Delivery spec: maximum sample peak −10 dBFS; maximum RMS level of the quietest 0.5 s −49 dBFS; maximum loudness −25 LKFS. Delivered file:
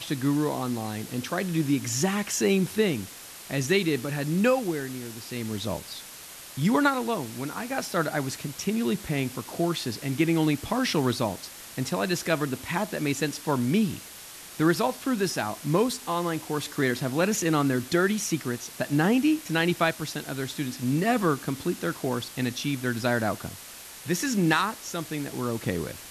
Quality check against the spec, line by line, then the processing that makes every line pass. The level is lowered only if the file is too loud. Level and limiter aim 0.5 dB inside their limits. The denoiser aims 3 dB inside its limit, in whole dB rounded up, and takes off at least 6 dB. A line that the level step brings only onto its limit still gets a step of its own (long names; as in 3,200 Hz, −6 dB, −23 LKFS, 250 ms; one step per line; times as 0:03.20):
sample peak −7.5 dBFS: out of spec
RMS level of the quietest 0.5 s −44 dBFS: out of spec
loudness −27.0 LKFS: in spec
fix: broadband denoise 8 dB, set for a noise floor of −44 dBFS
brickwall limiter −10.5 dBFS